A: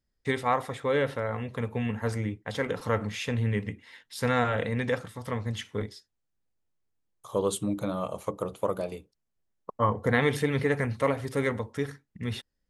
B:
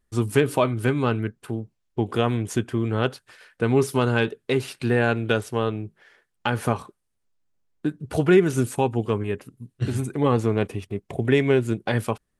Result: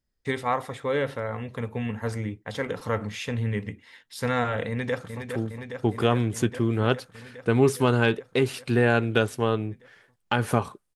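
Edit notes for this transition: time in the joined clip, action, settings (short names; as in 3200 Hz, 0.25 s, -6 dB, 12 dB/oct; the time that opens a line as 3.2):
A
4.68–5.24 echo throw 0.41 s, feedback 80%, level -6.5 dB
5.24 switch to B from 1.38 s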